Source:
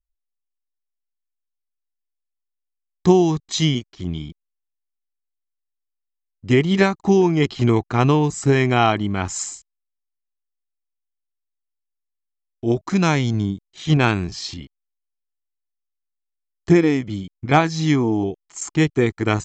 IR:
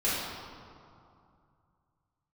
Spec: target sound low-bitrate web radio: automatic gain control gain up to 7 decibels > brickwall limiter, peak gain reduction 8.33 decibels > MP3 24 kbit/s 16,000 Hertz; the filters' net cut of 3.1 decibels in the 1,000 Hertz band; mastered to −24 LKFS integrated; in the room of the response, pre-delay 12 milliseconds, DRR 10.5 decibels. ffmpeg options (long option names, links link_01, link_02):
-filter_complex "[0:a]equalizer=frequency=1000:width_type=o:gain=-4.5,asplit=2[link_01][link_02];[1:a]atrim=start_sample=2205,adelay=12[link_03];[link_02][link_03]afir=irnorm=-1:irlink=0,volume=-21.5dB[link_04];[link_01][link_04]amix=inputs=2:normalize=0,dynaudnorm=maxgain=7dB,alimiter=limit=-11dB:level=0:latency=1,volume=-1.5dB" -ar 16000 -c:a libmp3lame -b:a 24k